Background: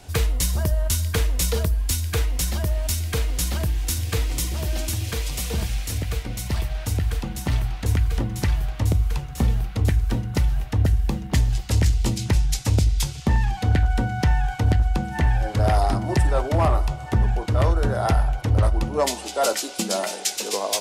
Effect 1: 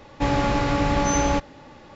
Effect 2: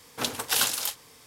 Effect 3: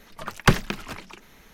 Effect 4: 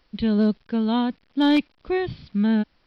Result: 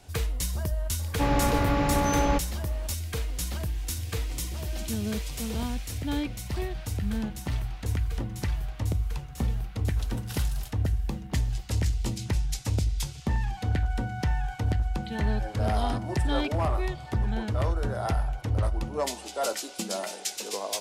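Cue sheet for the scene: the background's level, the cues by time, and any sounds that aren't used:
background -7.5 dB
0.99 add 1 -3 dB + high shelf 5700 Hz -8.5 dB
4.67 add 4 -12.5 dB
9.78 add 2 -16.5 dB
14.88 add 4 -7 dB + HPF 540 Hz 6 dB/oct
not used: 3

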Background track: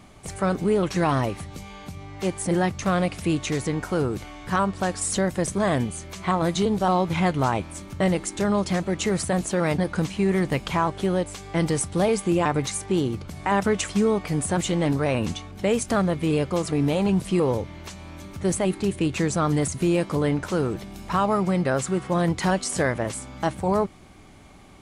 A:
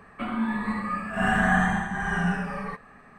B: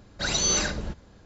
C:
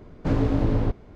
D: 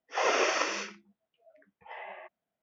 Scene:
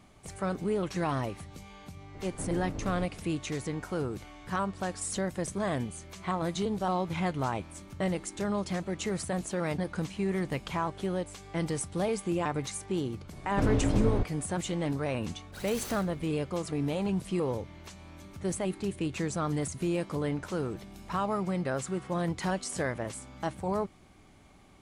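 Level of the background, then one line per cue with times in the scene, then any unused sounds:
background track -8.5 dB
2.14 add C -3.5 dB + compressor 3:1, threshold -35 dBFS
13.32 add C -4.5 dB
15.33 add B -17.5 dB + noise-modulated delay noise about 5000 Hz, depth 0.035 ms
not used: A, D

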